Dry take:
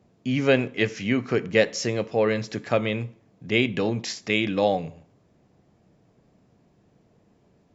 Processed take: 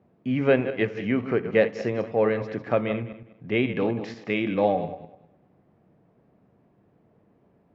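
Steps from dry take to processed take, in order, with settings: backward echo that repeats 101 ms, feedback 44%, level -10.5 dB; low-pass 1.9 kHz 12 dB/octave; bass shelf 74 Hz -9 dB

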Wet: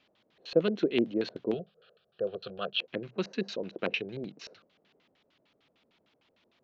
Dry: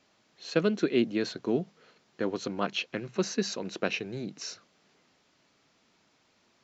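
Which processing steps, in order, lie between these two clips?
LFO low-pass square 6.6 Hz 540–3300 Hz; 1.54–2.80 s: static phaser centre 1.4 kHz, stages 8; trim -4 dB

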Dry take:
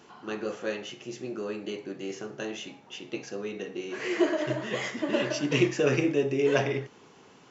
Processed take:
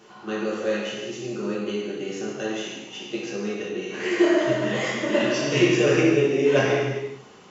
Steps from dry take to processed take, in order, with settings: gated-style reverb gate 430 ms falling, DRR -5 dB

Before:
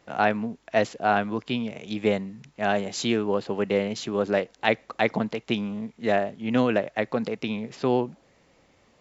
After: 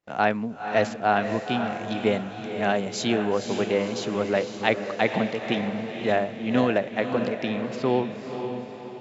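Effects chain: gate -59 dBFS, range -25 dB; on a send: echo that smears into a reverb 511 ms, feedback 49%, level -7 dB

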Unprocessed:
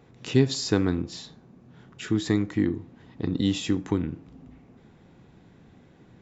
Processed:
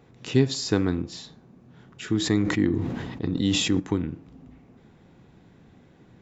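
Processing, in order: 2.17–3.80 s: decay stretcher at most 32 dB/s

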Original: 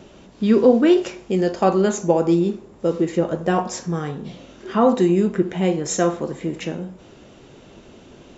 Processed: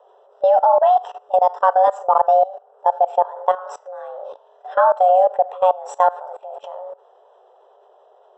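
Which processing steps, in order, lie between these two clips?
frequency shift +370 Hz; boxcar filter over 20 samples; level held to a coarse grid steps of 20 dB; trim +7.5 dB

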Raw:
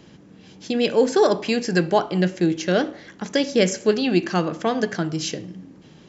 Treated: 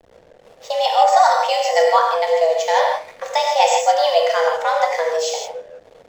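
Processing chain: frequency shift +320 Hz; gated-style reverb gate 190 ms flat, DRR -0.5 dB; hysteresis with a dead band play -38 dBFS; trim +1 dB

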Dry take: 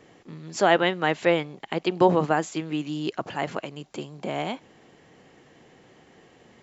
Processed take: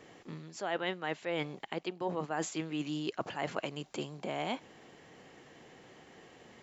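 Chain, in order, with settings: reverse; compression 20:1, threshold -29 dBFS, peak gain reduction 18 dB; reverse; bass shelf 390 Hz -4 dB

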